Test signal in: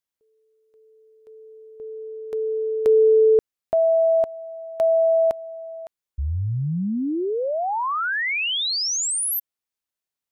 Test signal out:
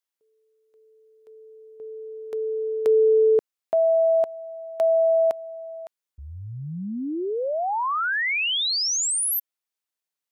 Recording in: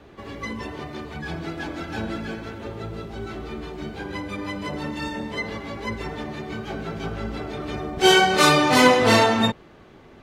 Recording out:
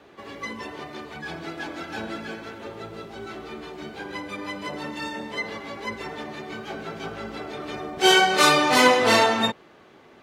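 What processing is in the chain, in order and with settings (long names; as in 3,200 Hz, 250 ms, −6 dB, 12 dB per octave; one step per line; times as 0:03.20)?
high-pass filter 370 Hz 6 dB per octave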